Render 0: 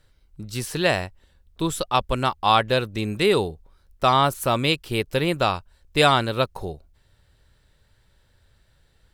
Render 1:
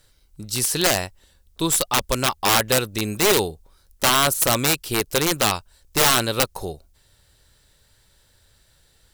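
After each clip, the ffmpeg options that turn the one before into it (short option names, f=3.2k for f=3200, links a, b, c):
-af "aeval=exprs='(tanh(2.24*val(0)+0.2)-tanh(0.2))/2.24':c=same,bass=f=250:g=-3,treble=f=4k:g=11,aeval=exprs='(mod(4.22*val(0)+1,2)-1)/4.22':c=same,volume=2.5dB"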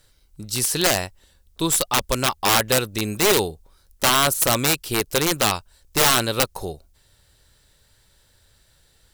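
-af anull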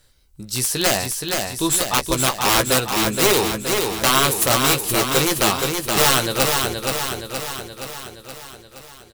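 -filter_complex "[0:a]asplit=2[a][b];[b]adelay=15,volume=-8dB[c];[a][c]amix=inputs=2:normalize=0,aecho=1:1:472|944|1416|1888|2360|2832|3304|3776:0.596|0.351|0.207|0.122|0.0722|0.0426|0.0251|0.0148"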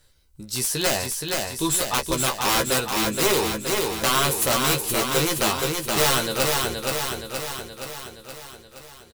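-filter_complex "[0:a]asplit=2[a][b];[b]aeval=exprs='0.141*(abs(mod(val(0)/0.141+3,4)-2)-1)':c=same,volume=-11dB[c];[a][c]amix=inputs=2:normalize=0,asplit=2[d][e];[e]adelay=13,volume=-7.5dB[f];[d][f]amix=inputs=2:normalize=0,volume=-5.5dB"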